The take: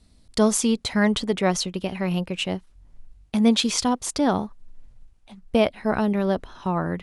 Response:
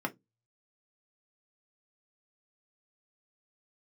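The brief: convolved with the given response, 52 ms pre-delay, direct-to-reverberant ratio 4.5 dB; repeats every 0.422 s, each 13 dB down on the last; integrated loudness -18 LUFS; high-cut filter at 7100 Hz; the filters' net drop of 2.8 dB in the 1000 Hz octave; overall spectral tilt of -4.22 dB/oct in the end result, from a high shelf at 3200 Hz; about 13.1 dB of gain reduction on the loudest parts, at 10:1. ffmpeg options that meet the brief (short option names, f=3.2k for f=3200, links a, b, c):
-filter_complex "[0:a]lowpass=7.1k,equalizer=f=1k:t=o:g=-4.5,highshelf=f=3.2k:g=7.5,acompressor=threshold=-27dB:ratio=10,aecho=1:1:422|844|1266:0.224|0.0493|0.0108,asplit=2[a][b];[1:a]atrim=start_sample=2205,adelay=52[c];[b][c]afir=irnorm=-1:irlink=0,volume=-10dB[d];[a][d]amix=inputs=2:normalize=0,volume=12dB"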